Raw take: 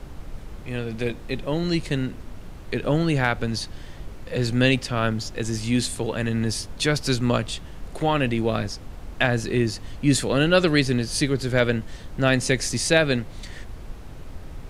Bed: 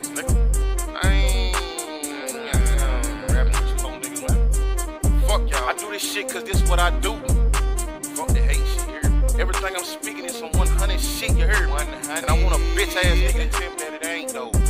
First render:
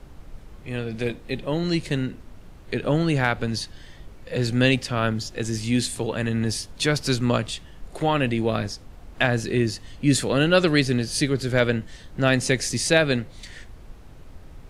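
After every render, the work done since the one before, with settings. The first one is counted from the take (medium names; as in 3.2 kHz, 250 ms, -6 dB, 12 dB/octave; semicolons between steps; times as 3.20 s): noise print and reduce 6 dB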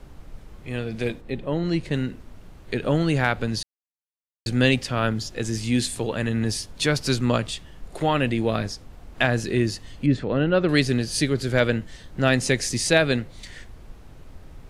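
1.20–1.93 s: treble shelf 2.1 kHz -> 3.6 kHz -10.5 dB; 3.63–4.46 s: mute; 10.06–10.69 s: tape spacing loss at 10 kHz 36 dB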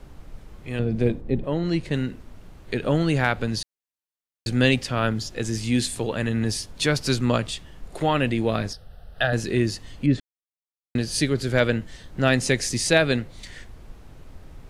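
0.79–1.44 s: tilt shelf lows +8 dB, about 810 Hz; 8.73–9.33 s: static phaser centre 1.5 kHz, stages 8; 10.20–10.95 s: mute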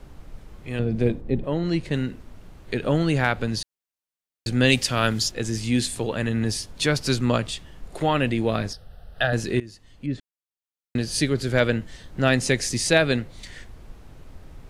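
4.68–5.30 s: treble shelf 3.7 kHz -> 2.2 kHz +11.5 dB; 9.60–11.09 s: fade in, from -19.5 dB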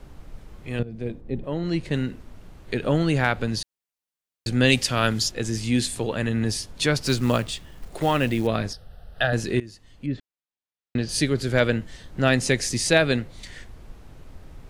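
0.83–1.93 s: fade in, from -14.5 dB; 7.02–8.47 s: companded quantiser 6-bit; 10.09–11.09 s: low-pass 4.5 kHz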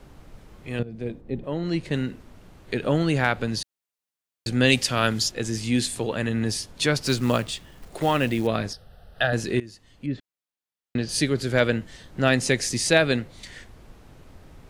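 bass shelf 67 Hz -8 dB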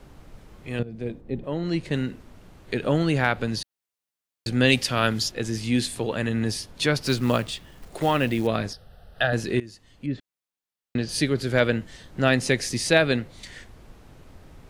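dynamic bell 7.4 kHz, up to -5 dB, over -43 dBFS, Q 1.5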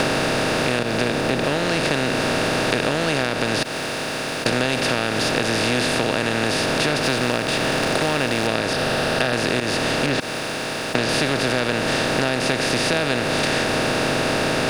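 spectral levelling over time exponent 0.2; compression, threshold -17 dBFS, peak gain reduction 10.5 dB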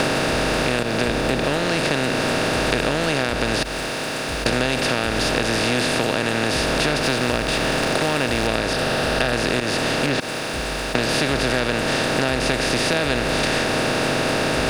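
add bed -15 dB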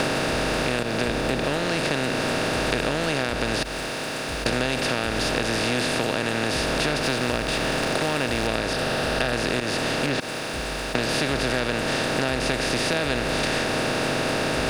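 trim -3.5 dB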